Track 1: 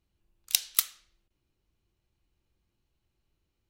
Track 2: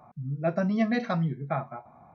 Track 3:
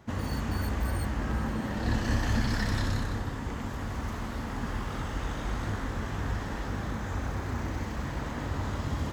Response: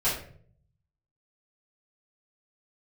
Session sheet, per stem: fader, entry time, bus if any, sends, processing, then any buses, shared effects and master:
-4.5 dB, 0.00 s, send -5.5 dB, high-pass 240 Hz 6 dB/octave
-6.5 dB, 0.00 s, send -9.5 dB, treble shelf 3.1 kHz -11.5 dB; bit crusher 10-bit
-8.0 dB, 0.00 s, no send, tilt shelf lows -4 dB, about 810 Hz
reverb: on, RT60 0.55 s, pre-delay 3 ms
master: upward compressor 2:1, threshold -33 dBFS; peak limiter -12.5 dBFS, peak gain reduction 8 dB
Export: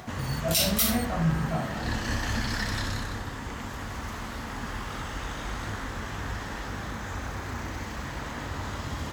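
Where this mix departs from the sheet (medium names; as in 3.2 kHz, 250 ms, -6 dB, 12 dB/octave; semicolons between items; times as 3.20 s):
stem 2 -6.5 dB -> -14.5 dB; stem 3 -8.0 dB -> +0.5 dB; reverb return +10.0 dB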